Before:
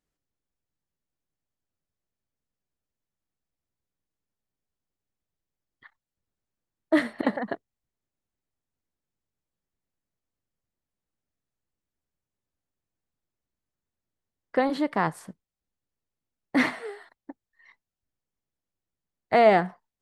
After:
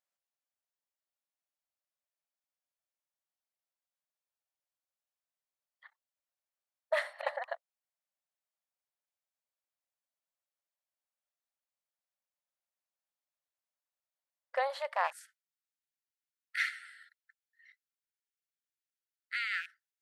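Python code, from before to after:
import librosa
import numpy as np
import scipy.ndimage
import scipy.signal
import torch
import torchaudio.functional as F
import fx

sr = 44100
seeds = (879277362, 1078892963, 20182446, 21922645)

y = fx.rattle_buzz(x, sr, strikes_db=-31.0, level_db=-28.0)
y = fx.brickwall_highpass(y, sr, low_hz=fx.steps((0.0, 510.0), (15.11, 1300.0)))
y = y * librosa.db_to_amplitude(-5.0)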